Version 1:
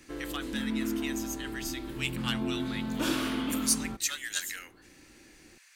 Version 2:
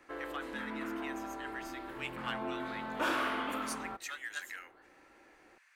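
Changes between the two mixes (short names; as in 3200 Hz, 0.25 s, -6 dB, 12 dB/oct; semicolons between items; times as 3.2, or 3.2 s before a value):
background +6.0 dB; master: add three-band isolator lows -21 dB, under 510 Hz, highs -17 dB, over 2100 Hz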